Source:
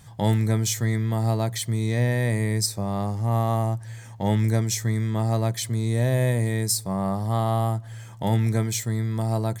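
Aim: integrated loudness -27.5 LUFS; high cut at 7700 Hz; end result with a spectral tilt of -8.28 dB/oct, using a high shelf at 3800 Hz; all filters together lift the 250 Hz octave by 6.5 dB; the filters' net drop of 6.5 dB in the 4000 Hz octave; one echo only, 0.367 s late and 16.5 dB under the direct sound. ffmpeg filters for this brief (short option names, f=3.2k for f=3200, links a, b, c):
-af "lowpass=7.7k,equalizer=f=250:t=o:g=8,highshelf=f=3.8k:g=-5,equalizer=f=4k:t=o:g=-4.5,aecho=1:1:367:0.15,volume=-5.5dB"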